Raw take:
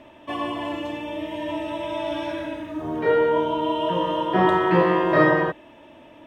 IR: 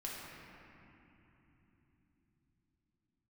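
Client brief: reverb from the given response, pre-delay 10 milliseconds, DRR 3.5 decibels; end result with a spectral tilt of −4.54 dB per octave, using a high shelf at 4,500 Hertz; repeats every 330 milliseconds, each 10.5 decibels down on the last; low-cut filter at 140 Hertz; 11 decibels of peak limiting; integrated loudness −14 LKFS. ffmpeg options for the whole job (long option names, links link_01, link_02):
-filter_complex "[0:a]highpass=140,highshelf=frequency=4500:gain=-8,alimiter=limit=-15.5dB:level=0:latency=1,aecho=1:1:330|660|990:0.299|0.0896|0.0269,asplit=2[link_01][link_02];[1:a]atrim=start_sample=2205,adelay=10[link_03];[link_02][link_03]afir=irnorm=-1:irlink=0,volume=-4dB[link_04];[link_01][link_04]amix=inputs=2:normalize=0,volume=10.5dB"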